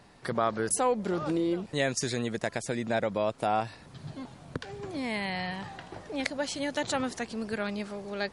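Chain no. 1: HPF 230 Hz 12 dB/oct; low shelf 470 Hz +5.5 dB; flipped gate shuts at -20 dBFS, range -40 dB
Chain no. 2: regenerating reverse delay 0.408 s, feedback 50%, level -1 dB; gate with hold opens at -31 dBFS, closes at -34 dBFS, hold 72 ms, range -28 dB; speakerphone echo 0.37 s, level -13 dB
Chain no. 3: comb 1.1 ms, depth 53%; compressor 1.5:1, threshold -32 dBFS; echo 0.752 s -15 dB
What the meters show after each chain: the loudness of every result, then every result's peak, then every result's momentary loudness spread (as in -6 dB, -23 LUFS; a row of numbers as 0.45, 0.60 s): -39.0, -28.5, -33.5 LUFS; -18.0, -7.5, -10.5 dBFS; 17, 8, 10 LU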